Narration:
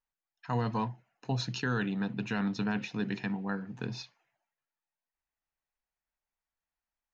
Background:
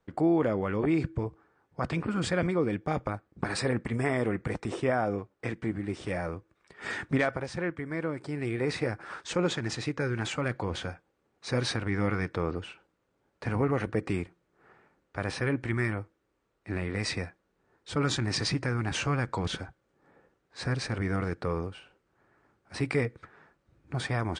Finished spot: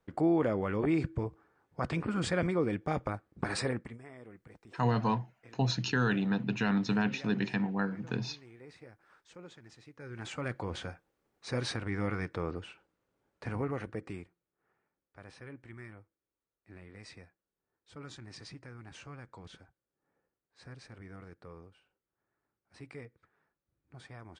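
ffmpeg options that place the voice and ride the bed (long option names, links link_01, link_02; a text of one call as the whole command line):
ffmpeg -i stem1.wav -i stem2.wav -filter_complex "[0:a]adelay=4300,volume=2.5dB[link_01];[1:a]volume=15dB,afade=type=out:start_time=3.6:duration=0.39:silence=0.1,afade=type=in:start_time=9.95:duration=0.56:silence=0.133352,afade=type=out:start_time=13.29:duration=1.24:silence=0.199526[link_02];[link_01][link_02]amix=inputs=2:normalize=0" out.wav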